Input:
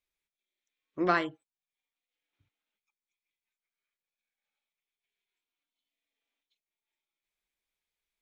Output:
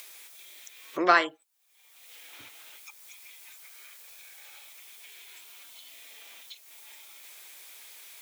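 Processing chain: high-pass 500 Hz 12 dB/octave; treble shelf 6 kHz +9 dB; upward compressor, threshold -32 dBFS; trim +7 dB

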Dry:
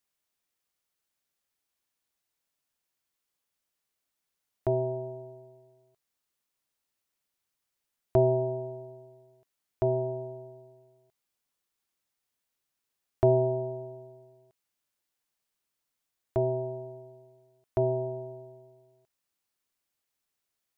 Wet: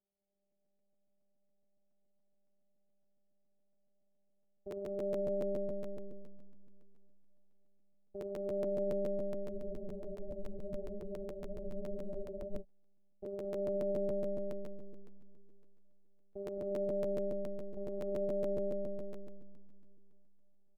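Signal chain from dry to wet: elliptic low-pass 690 Hz, stop band 40 dB; reverse; compression, threshold -38 dBFS, peak gain reduction 19 dB; reverse; peak limiter -40.5 dBFS, peak gain reduction 10.5 dB; robot voice 199 Hz; bouncing-ball echo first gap 220 ms, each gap 0.6×, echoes 5; on a send at -2.5 dB: reverberation RT60 3.0 s, pre-delay 80 ms; on the sum: spectral freeze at 9.51 s, 3.10 s; crackling interface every 0.14 s, samples 512, repeat, from 0.50 s; trim +7 dB

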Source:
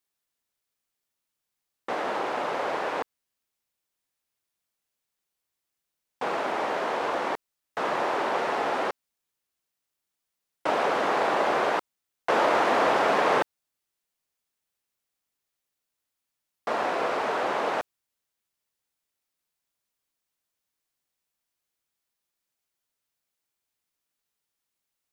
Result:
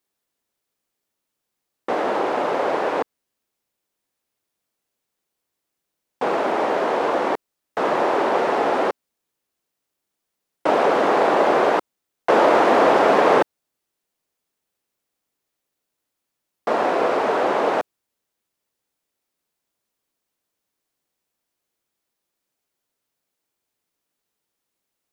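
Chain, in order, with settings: peaking EQ 350 Hz +7.5 dB 2.6 oct; trim +2.5 dB

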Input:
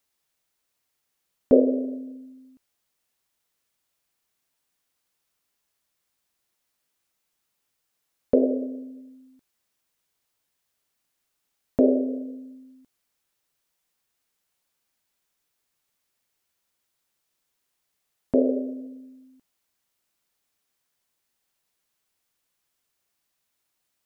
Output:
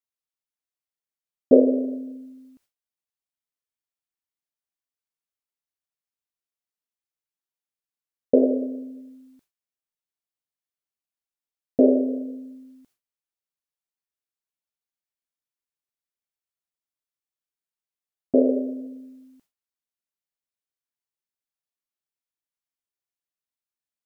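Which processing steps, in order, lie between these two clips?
gate with hold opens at -52 dBFS; trim +2.5 dB

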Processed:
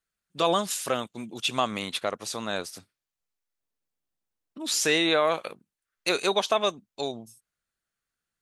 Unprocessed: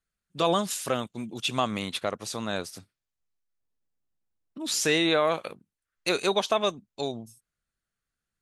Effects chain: bass shelf 210 Hz -8.5 dB; trim +1.5 dB

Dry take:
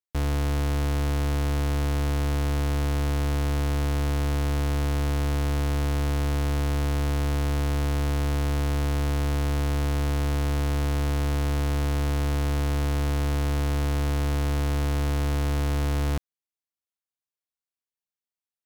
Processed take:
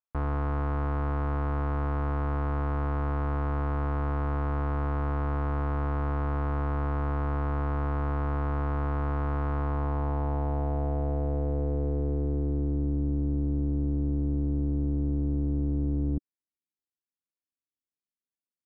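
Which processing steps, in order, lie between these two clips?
low-pass sweep 1.2 kHz -> 300 Hz, 9.53–13.00 s; trim -4 dB

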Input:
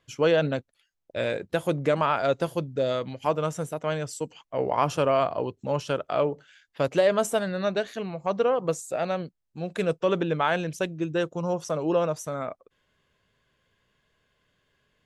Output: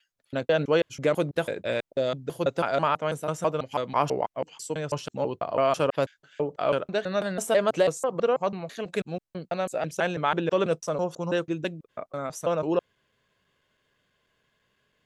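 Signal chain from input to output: slices played last to first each 164 ms, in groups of 6; bass shelf 83 Hz -9 dB

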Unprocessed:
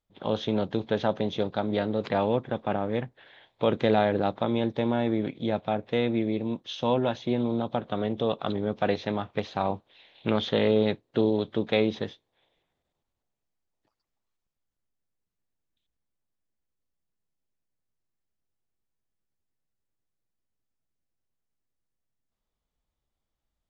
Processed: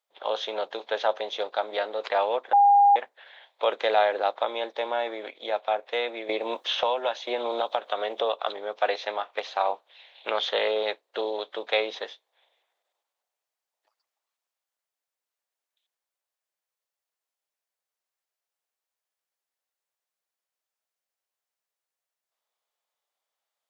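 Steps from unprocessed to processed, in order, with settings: high-pass 550 Hz 24 dB/octave; 2.53–2.96 s: bleep 809 Hz -17.5 dBFS; 6.29–8.33 s: three bands compressed up and down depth 100%; trim +4 dB

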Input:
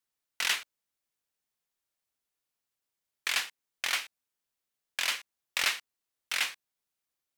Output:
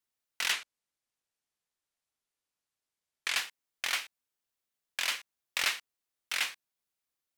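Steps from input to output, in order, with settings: 0.52–3.36 s: low-pass 11 kHz 12 dB/octave; trim -1.5 dB

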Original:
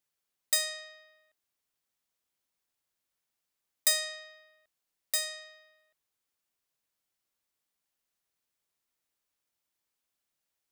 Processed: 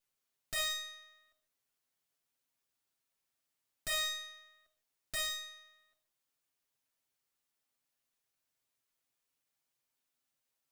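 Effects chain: comb filter that takes the minimum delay 7.5 ms; peak limiter -23 dBFS, peak gain reduction 11 dB; gated-style reverb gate 170 ms flat, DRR 8 dB; slew-rate limiter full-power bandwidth 120 Hz

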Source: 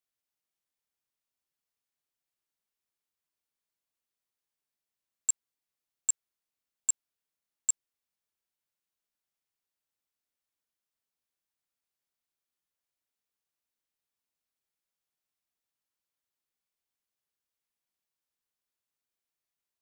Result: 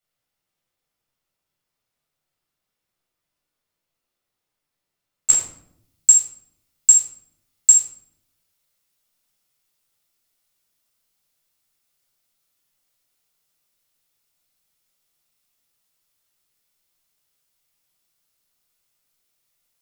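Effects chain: treble shelf 3.4 kHz -3 dB, from 5.30 s +9 dB; reverberation RT60 0.75 s, pre-delay 12 ms, DRR -4 dB; trim +4 dB

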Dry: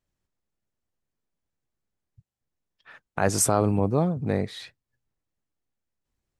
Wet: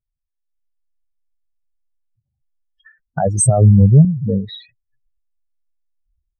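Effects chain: spectral contrast enhancement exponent 3.8; 3.45–4.05 s: resonant low shelf 210 Hz +7 dB, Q 1.5; level rider gain up to 17 dB; dynamic bell 500 Hz, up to -3 dB, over -27 dBFS, Q 2.1; endings held to a fixed fall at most 180 dB/s

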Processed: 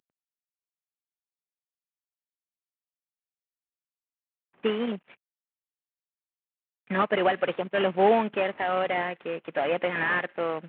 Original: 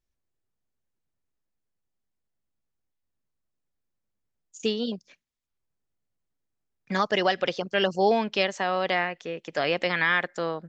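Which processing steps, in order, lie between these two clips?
CVSD coder 16 kbps; high-pass 170 Hz 12 dB/octave; trim +2.5 dB

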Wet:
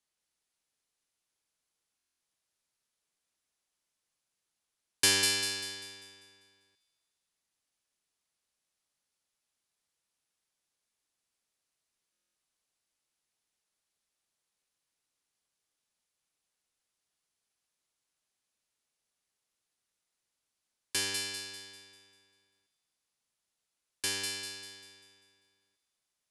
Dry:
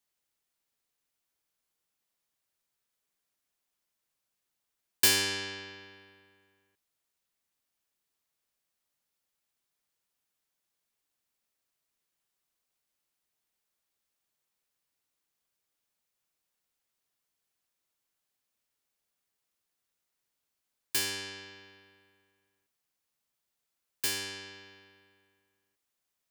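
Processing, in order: Chebyshev low-pass 11 kHz, order 4; feedback echo behind a high-pass 197 ms, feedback 44%, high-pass 3.4 kHz, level -3.5 dB; buffer glitch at 1.97/12.12 s, samples 1024, times 9

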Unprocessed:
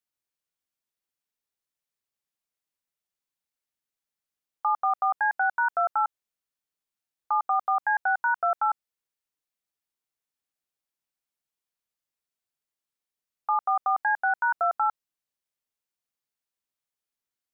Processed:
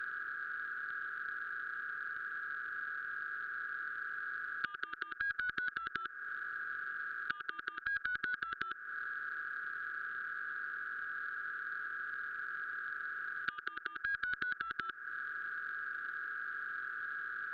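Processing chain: spectral levelling over time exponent 0.2; compression 16:1, threshold -29 dBFS, peak gain reduction 13 dB; Chebyshev shaper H 3 -17 dB, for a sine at -17 dBFS; elliptic band-stop 400–1500 Hz, stop band 60 dB; trim +4.5 dB

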